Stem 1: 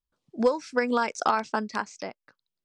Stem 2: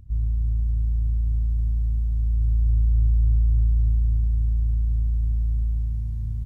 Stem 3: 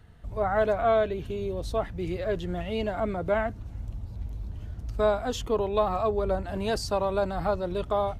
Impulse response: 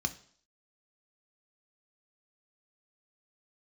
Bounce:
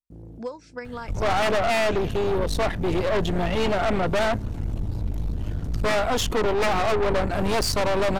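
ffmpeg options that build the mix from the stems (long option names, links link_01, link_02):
-filter_complex "[0:a]volume=-10.5dB,asplit=2[link_01][link_02];[1:a]acrusher=bits=3:mix=0:aa=0.5,highpass=100,volume=-12dB[link_03];[2:a]aeval=exprs='0.251*sin(PI/2*3.16*val(0)/0.251)':channel_layout=same,aeval=exprs='(tanh(11.2*val(0)+0.6)-tanh(0.6))/11.2':channel_layout=same,adelay=850,volume=1dB[link_04];[link_02]apad=whole_len=284541[link_05];[link_03][link_05]sidechaincompress=threshold=-47dB:ratio=8:attack=16:release=390[link_06];[link_01][link_06][link_04]amix=inputs=3:normalize=0,equalizer=frequency=67:width_type=o:width=1.1:gain=-3.5"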